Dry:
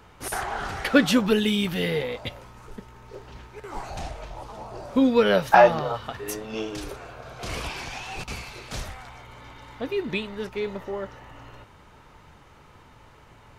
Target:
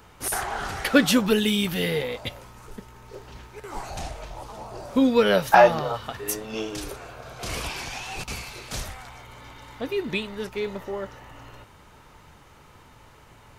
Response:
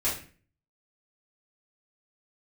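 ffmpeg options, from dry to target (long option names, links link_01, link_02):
-af "highshelf=frequency=6500:gain=9"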